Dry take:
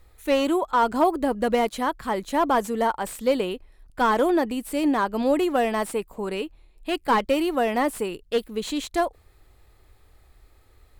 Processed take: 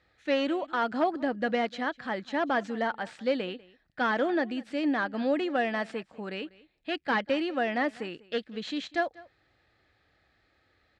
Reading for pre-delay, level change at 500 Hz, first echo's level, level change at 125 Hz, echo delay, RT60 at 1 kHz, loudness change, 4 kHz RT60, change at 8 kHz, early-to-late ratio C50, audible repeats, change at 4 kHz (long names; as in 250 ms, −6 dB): no reverb audible, −6.5 dB, −21.5 dB, can't be measured, 195 ms, no reverb audible, −6.0 dB, no reverb audible, below −15 dB, no reverb audible, 1, −4.0 dB